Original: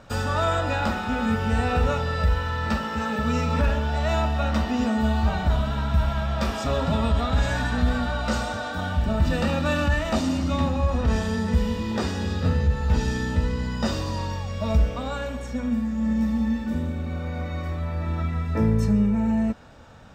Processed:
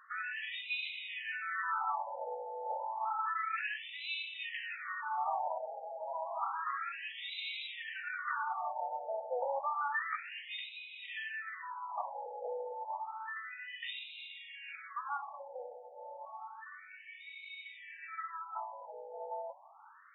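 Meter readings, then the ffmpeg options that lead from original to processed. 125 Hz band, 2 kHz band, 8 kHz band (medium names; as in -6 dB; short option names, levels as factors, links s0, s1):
under -40 dB, -8.0 dB, under -40 dB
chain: -af "highpass=f=480:w=0.5412,highpass=f=480:w=1.3066,equalizer=f=620:t=q:w=4:g=-7,equalizer=f=1500:t=q:w=4:g=-5,equalizer=f=3300:t=q:w=4:g=-4,lowpass=f=6600:w=0.5412,lowpass=f=6600:w=1.3066,afftfilt=real='re*between(b*sr/1024,620*pow(2900/620,0.5+0.5*sin(2*PI*0.3*pts/sr))/1.41,620*pow(2900/620,0.5+0.5*sin(2*PI*0.3*pts/sr))*1.41)':imag='im*between(b*sr/1024,620*pow(2900/620,0.5+0.5*sin(2*PI*0.3*pts/sr))/1.41,620*pow(2900/620,0.5+0.5*sin(2*PI*0.3*pts/sr))*1.41)':win_size=1024:overlap=0.75"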